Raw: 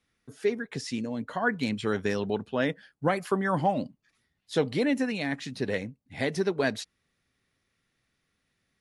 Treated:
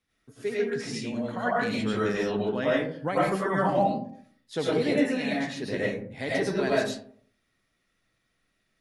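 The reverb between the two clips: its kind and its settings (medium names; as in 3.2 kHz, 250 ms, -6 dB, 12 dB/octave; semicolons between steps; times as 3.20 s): algorithmic reverb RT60 0.57 s, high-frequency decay 0.4×, pre-delay 60 ms, DRR -6.5 dB; trim -5 dB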